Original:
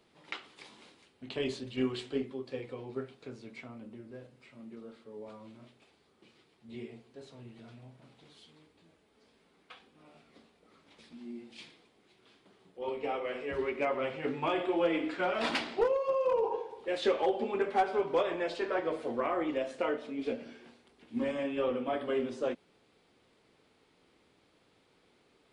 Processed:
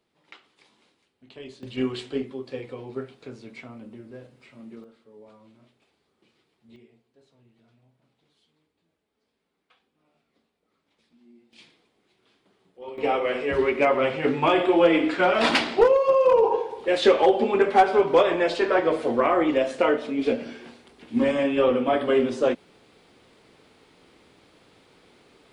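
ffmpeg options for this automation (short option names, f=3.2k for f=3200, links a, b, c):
-af "asetnsamples=n=441:p=0,asendcmd='1.63 volume volume 5dB;4.84 volume volume -3.5dB;6.76 volume volume -11dB;11.53 volume volume -2dB;12.98 volume volume 11dB',volume=-7.5dB"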